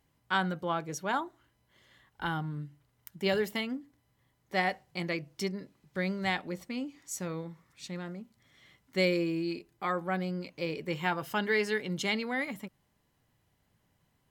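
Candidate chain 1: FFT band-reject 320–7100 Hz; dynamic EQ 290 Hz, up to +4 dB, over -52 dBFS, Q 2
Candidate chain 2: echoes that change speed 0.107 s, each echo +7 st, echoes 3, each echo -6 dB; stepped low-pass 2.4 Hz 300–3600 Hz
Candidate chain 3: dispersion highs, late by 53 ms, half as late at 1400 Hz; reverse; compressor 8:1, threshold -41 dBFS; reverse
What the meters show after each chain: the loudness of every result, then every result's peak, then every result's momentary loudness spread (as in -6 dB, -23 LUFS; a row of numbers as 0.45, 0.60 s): -39.0, -30.0, -45.0 LUFS; -24.0, -10.5, -30.5 dBFS; 11, 13, 9 LU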